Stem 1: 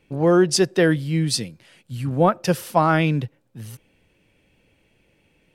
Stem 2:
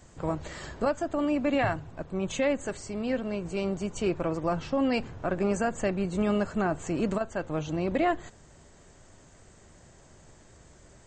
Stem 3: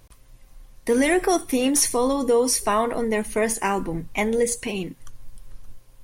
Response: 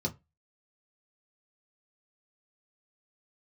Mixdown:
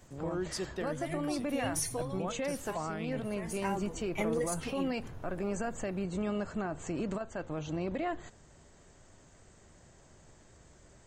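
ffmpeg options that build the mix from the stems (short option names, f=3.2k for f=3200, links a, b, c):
-filter_complex "[0:a]volume=-17dB,asplit=2[a][b];[1:a]volume=-4dB[c];[2:a]asplit=2[d][e];[e]adelay=3.1,afreqshift=2.9[f];[d][f]amix=inputs=2:normalize=1,volume=-9dB[g];[b]apad=whole_len=266162[h];[g][h]sidechaincompress=threshold=-46dB:ratio=4:attack=5.7:release=593[i];[a][c]amix=inputs=2:normalize=0,alimiter=level_in=2.5dB:limit=-24dB:level=0:latency=1:release=64,volume=-2.5dB,volume=0dB[j];[i][j]amix=inputs=2:normalize=0"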